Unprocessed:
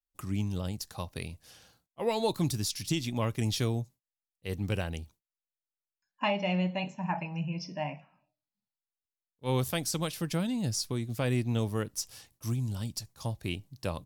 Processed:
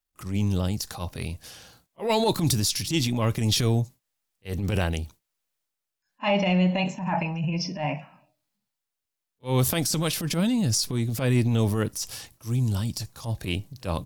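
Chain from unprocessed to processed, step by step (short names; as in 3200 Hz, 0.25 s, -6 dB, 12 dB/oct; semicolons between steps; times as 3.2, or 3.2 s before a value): transient shaper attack -11 dB, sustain +5 dB; pre-echo 33 ms -22.5 dB; gain +8 dB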